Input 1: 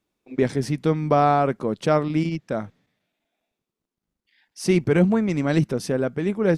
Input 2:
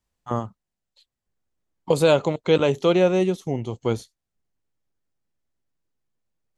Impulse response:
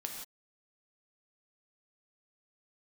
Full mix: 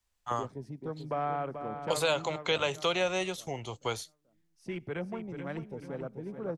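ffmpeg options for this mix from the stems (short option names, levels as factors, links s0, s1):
-filter_complex "[0:a]afwtdn=0.0282,volume=0.224,asplit=3[s0][s1][s2];[s1]volume=0.0794[s3];[s2]volume=0.376[s4];[1:a]equalizer=f=210:w=0.37:g=-12,volume=1.33[s5];[2:a]atrim=start_sample=2205[s6];[s3][s6]afir=irnorm=-1:irlink=0[s7];[s4]aecho=0:1:435|870|1305|1740|2175:1|0.38|0.144|0.0549|0.0209[s8];[s0][s5][s7][s8]amix=inputs=4:normalize=0,acrossover=split=180|460|3300[s9][s10][s11][s12];[s9]acompressor=threshold=0.00708:ratio=4[s13];[s10]acompressor=threshold=0.00447:ratio=4[s14];[s11]acompressor=threshold=0.0447:ratio=4[s15];[s12]acompressor=threshold=0.0158:ratio=4[s16];[s13][s14][s15][s16]amix=inputs=4:normalize=0"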